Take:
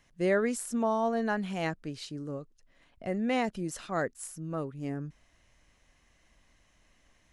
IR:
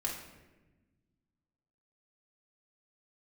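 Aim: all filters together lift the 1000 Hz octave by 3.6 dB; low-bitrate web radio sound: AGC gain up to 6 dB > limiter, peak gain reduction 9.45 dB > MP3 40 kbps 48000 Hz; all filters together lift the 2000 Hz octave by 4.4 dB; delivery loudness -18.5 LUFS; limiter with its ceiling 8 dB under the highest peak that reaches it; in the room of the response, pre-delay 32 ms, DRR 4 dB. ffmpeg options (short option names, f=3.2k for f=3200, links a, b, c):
-filter_complex "[0:a]equalizer=f=1k:t=o:g=4,equalizer=f=2k:t=o:g=4,alimiter=limit=-21.5dB:level=0:latency=1,asplit=2[a][b];[1:a]atrim=start_sample=2205,adelay=32[c];[b][c]afir=irnorm=-1:irlink=0,volume=-7dB[d];[a][d]amix=inputs=2:normalize=0,dynaudnorm=m=6dB,alimiter=level_in=1.5dB:limit=-24dB:level=0:latency=1,volume=-1.5dB,volume=17dB" -ar 48000 -c:a libmp3lame -b:a 40k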